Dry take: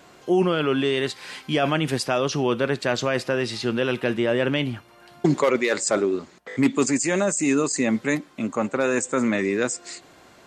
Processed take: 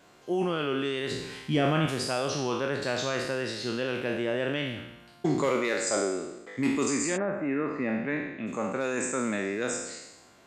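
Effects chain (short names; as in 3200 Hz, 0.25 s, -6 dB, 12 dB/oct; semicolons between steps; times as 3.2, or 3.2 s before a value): spectral trails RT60 0.99 s; 1.11–1.86 low shelf 250 Hz +11.5 dB; 7.16–8.46 LPF 1700 Hz -> 3500 Hz 24 dB/oct; gain -9 dB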